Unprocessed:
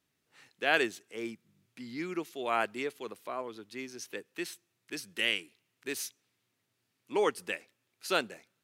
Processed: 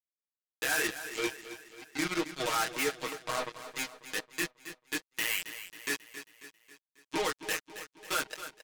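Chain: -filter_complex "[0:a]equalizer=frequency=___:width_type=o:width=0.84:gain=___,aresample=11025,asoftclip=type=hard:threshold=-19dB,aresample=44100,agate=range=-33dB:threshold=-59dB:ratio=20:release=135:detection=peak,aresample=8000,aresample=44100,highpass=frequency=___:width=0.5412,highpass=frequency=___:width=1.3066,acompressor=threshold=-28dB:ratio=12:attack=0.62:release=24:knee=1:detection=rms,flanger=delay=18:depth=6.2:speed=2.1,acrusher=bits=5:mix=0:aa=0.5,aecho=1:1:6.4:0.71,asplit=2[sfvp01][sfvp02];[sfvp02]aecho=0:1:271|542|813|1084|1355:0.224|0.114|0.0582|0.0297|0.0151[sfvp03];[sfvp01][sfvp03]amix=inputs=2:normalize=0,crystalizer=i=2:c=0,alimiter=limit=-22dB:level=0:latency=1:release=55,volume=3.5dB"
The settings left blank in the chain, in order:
1.6k, 8, 42, 42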